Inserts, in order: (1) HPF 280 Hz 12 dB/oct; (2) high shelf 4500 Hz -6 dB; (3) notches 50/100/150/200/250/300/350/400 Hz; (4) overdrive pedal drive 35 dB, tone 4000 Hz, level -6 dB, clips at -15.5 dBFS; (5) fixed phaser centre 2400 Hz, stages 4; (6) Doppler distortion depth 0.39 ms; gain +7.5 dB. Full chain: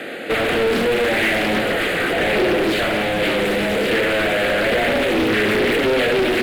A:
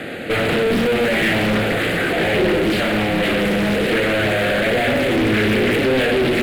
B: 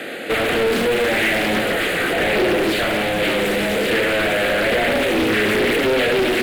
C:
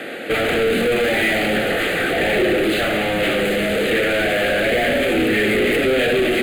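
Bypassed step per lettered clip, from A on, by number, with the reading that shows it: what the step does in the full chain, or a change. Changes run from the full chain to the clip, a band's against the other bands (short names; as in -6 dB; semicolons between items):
1, 125 Hz band +7.0 dB; 2, 8 kHz band +3.5 dB; 6, 1 kHz band -2.0 dB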